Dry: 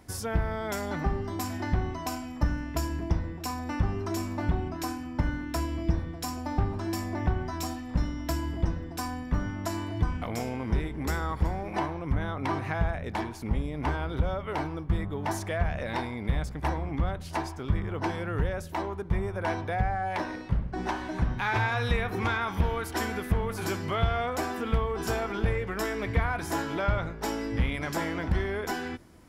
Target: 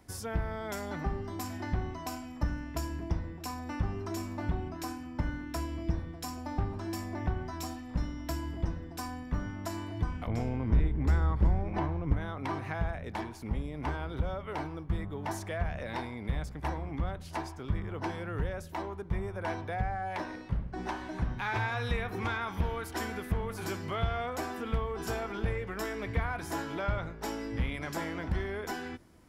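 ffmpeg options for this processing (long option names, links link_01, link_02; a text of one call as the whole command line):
ffmpeg -i in.wav -filter_complex "[0:a]asettb=1/sr,asplit=3[link_01][link_02][link_03];[link_01]atrim=end=10.274[link_04];[link_02]atrim=start=10.27:end=12.13,asetpts=PTS-STARTPTS,afade=type=in:duration=0.004:curve=qsin,afade=type=out:start_time=1.856:duration=0.004:curve=qsin,aemphasis=mode=reproduction:type=bsi[link_05];[link_03]atrim=start=12.126[link_06];[link_04][link_05]acrossfade=duration=0.004:curve1=hsin:curve2=qsin[link_07];[link_07][link_06]acrossfade=duration=0.004:curve1=qsin:curve2=hsin,acrossover=split=480|3500[link_08][link_09][link_10];[link_08]volume=14.5dB,asoftclip=hard,volume=-14.5dB[link_11];[link_11][link_09][link_10]amix=inputs=3:normalize=0,volume=-5dB" out.wav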